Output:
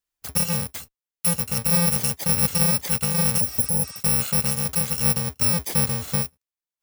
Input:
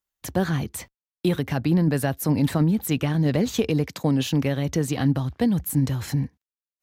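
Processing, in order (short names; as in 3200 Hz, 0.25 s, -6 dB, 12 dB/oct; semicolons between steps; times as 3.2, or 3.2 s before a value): FFT order left unsorted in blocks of 128 samples; spectral repair 3.43–3.98, 910–9900 Hz after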